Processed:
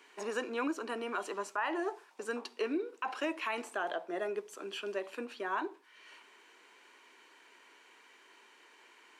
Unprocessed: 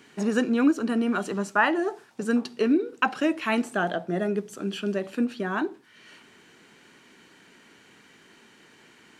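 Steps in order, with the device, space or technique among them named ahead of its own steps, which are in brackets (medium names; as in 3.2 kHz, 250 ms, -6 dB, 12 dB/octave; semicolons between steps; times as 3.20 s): laptop speaker (high-pass 350 Hz 24 dB/octave; peaking EQ 1 kHz +9 dB 0.34 oct; peaking EQ 2.4 kHz +4 dB 0.56 oct; peak limiter -17.5 dBFS, peak gain reduction 13.5 dB); trim -7 dB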